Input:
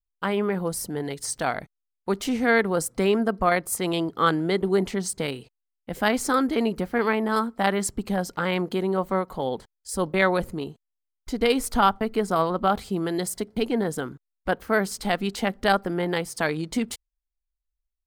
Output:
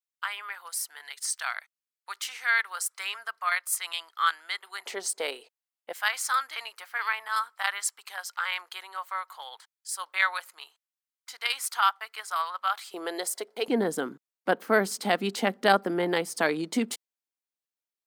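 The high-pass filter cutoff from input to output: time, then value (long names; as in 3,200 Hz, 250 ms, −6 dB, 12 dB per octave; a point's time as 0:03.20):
high-pass filter 24 dB per octave
1,200 Hz
from 0:04.86 470 Hz
from 0:05.93 1,100 Hz
from 0:12.94 460 Hz
from 0:13.68 210 Hz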